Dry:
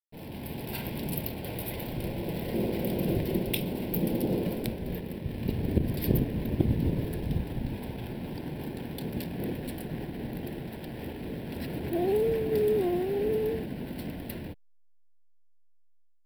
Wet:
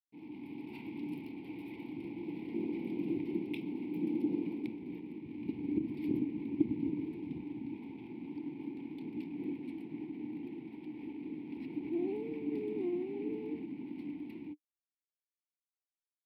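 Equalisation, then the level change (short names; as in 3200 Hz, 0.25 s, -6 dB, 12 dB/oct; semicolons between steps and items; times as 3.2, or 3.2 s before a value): vowel filter u; HPF 81 Hz; bell 820 Hz -7.5 dB 0.73 oct; +4.0 dB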